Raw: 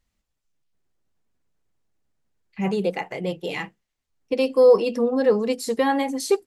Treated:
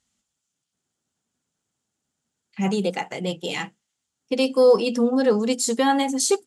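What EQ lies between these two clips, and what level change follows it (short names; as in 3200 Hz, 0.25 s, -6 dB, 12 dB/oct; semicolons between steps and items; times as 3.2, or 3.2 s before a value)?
tone controls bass +4 dB, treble +8 dB; speaker cabinet 120–9800 Hz, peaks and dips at 240 Hz +5 dB, 810 Hz +4 dB, 1400 Hz +6 dB, 3200 Hz +6 dB, 7000 Hz +5 dB; high shelf 6300 Hz +5 dB; -2.0 dB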